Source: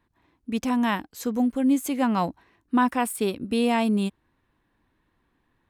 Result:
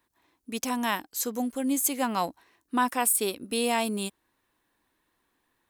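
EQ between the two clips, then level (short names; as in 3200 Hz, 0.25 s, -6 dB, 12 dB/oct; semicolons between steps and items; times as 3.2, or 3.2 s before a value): tone controls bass -11 dB, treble +8 dB; high shelf 7200 Hz +6 dB; -2.0 dB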